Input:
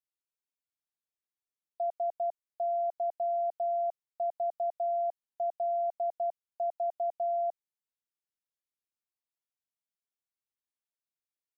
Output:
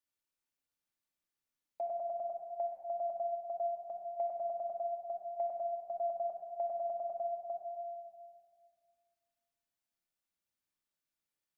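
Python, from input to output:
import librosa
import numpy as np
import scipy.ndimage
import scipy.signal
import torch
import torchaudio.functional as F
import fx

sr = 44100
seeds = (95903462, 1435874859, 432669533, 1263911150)

p1 = fx.dynamic_eq(x, sr, hz=660.0, q=0.74, threshold_db=-44.0, ratio=4.0, max_db=-4)
p2 = p1 + fx.echo_single(p1, sr, ms=568, db=-21.0, dry=0)
y = fx.room_shoebox(p2, sr, seeds[0], volume_m3=2800.0, walls='mixed', distance_m=2.5)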